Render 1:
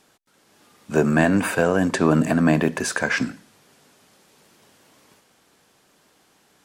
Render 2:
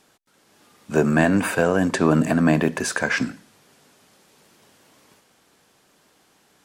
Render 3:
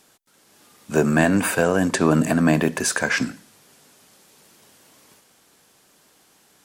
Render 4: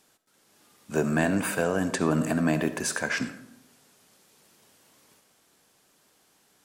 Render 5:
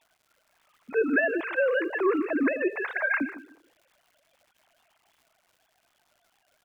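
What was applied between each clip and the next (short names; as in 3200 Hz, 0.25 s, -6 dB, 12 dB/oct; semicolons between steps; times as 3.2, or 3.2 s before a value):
nothing audible
high shelf 5600 Hz +8 dB
digital reverb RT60 0.87 s, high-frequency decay 0.4×, pre-delay 30 ms, DRR 12 dB; gain -7 dB
sine-wave speech; crackle 290/s -53 dBFS; echo 0.152 s -16 dB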